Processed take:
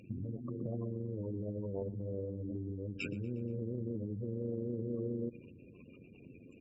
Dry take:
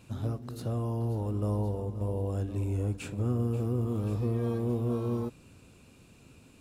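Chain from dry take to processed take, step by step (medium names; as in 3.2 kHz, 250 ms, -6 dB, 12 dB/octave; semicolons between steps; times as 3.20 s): tracing distortion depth 0.064 ms; spectral gate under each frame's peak -15 dB strong; AM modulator 93 Hz, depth 45%; peak limiter -31 dBFS, peak gain reduction 10.5 dB; peaking EQ 2.7 kHz -11.5 dB 1.3 oct; compression, threshold -39 dBFS, peak gain reduction 5.5 dB; frequency weighting D; feedback delay 119 ms, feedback 56%, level -20.5 dB; trim +8 dB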